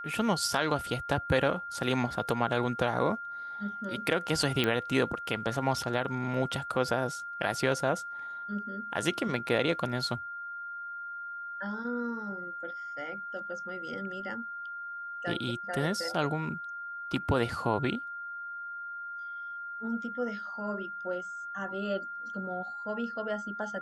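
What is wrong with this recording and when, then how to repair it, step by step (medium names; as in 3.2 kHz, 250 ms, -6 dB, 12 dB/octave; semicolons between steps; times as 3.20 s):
whine 1.4 kHz -37 dBFS
4.64 s: pop -14 dBFS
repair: de-click; band-stop 1.4 kHz, Q 30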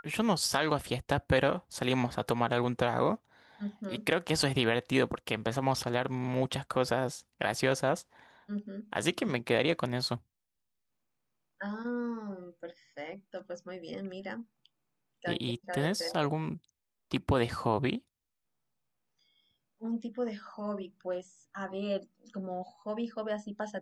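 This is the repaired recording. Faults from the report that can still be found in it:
nothing left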